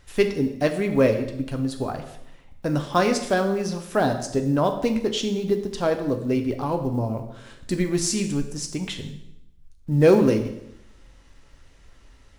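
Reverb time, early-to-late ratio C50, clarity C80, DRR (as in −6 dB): 0.80 s, 9.5 dB, 11.5 dB, 5.0 dB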